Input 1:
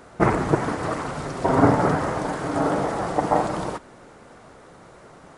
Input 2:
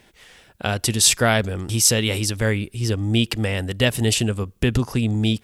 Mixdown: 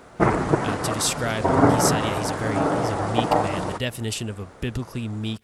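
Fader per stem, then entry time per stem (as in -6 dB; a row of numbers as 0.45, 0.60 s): 0.0, -8.5 dB; 0.00, 0.00 s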